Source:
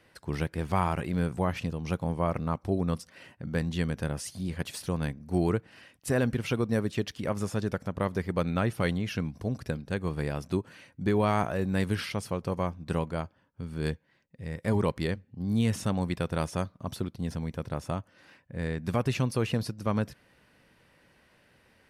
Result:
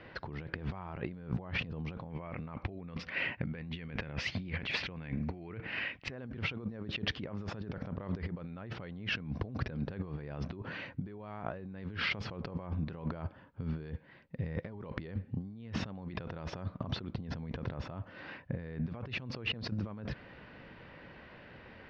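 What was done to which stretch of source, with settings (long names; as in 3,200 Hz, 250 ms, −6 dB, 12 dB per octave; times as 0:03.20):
0:02.10–0:06.12: parametric band 2,300 Hz +12 dB
whole clip: Bessel low-pass filter 2,600 Hz, order 8; brickwall limiter −19.5 dBFS; compressor whose output falls as the input rises −42 dBFS, ratio −1; level +2 dB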